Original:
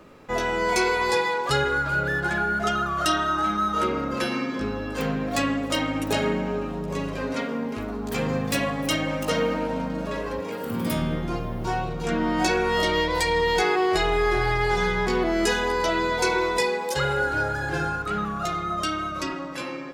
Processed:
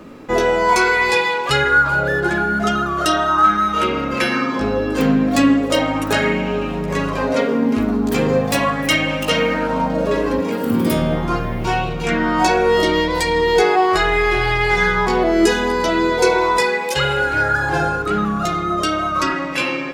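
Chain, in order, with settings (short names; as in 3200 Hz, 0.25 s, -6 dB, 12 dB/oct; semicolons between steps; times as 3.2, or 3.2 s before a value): in parallel at -2 dB: vocal rider; on the sum: LFO bell 0.38 Hz 240–2800 Hz +9 dB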